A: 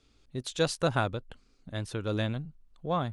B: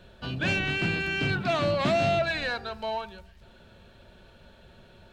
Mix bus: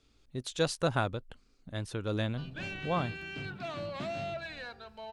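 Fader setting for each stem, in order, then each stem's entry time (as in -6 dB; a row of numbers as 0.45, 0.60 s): -2.0, -13.0 dB; 0.00, 2.15 s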